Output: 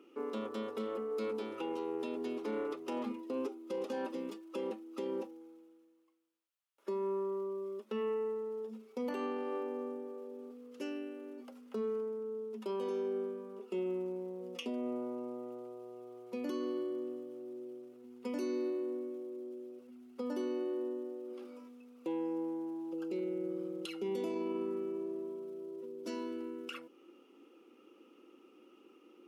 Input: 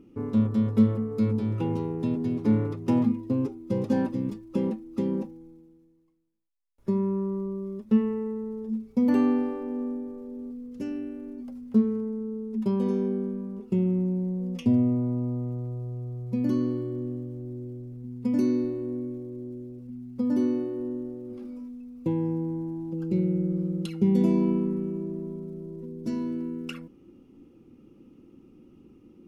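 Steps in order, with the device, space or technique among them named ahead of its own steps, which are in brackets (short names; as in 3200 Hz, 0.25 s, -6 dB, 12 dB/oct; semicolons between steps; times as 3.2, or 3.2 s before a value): laptop speaker (HPF 370 Hz 24 dB/oct; bell 1300 Hz +7 dB 0.45 oct; bell 2900 Hz +6.5 dB 0.57 oct; limiter -28.5 dBFS, peak gain reduction 11.5 dB); dynamic EQ 1500 Hz, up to -4 dB, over -55 dBFS, Q 0.75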